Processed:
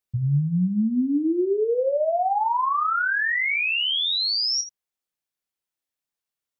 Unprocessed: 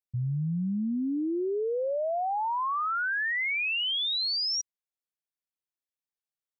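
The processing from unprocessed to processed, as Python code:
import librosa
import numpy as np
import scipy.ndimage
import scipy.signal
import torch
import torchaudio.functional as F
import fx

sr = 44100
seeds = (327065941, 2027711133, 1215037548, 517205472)

p1 = fx.rider(x, sr, range_db=10, speed_s=0.5)
p2 = x + (p1 * librosa.db_to_amplitude(-1.5))
y = fx.room_early_taps(p2, sr, ms=(28, 78), db=(-8.0, -13.0))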